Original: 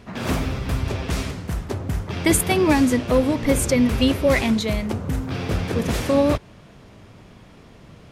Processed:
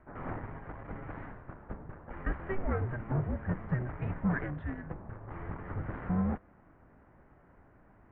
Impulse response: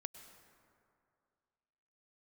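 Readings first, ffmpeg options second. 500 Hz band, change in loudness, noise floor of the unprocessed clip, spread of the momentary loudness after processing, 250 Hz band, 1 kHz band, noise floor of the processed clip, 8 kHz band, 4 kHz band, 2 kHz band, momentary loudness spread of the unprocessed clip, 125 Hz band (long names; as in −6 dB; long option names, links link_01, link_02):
−20.0 dB, −15.5 dB, −47 dBFS, 14 LU, −16.5 dB, −14.0 dB, −61 dBFS, below −40 dB, below −35 dB, −15.0 dB, 10 LU, −10.0 dB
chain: -af "lowshelf=frequency=160:gain=10,asoftclip=type=tanh:threshold=-13dB,highpass=frequency=330:width_type=q:width=0.5412,highpass=frequency=330:width_type=q:width=1.307,lowpass=frequency=2100:width_type=q:width=0.5176,lowpass=frequency=2100:width_type=q:width=0.7071,lowpass=frequency=2100:width_type=q:width=1.932,afreqshift=-370,volume=-8dB"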